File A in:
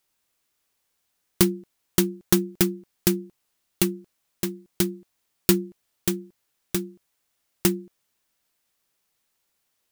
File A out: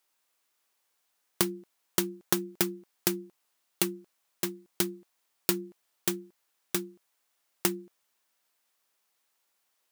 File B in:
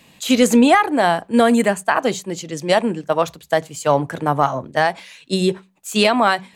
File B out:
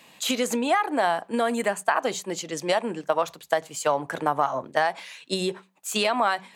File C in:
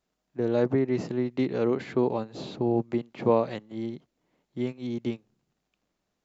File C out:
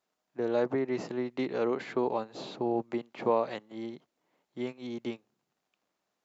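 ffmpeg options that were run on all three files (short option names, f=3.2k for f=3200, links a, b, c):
-af "acompressor=threshold=-18dB:ratio=6,highpass=f=390:p=1,equalizer=f=950:t=o:w=1.6:g=3.5,volume=-1.5dB"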